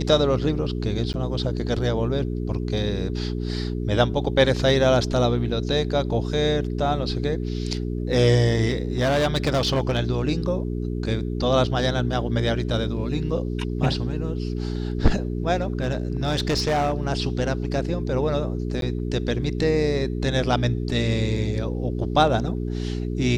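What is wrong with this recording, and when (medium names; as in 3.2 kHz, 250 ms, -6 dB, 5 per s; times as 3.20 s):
hum 60 Hz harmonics 7 -27 dBFS
1.13–1.14 s: dropout 9.7 ms
8.71–9.98 s: clipped -17 dBFS
15.61–17.02 s: clipped -18 dBFS
18.81–18.82 s: dropout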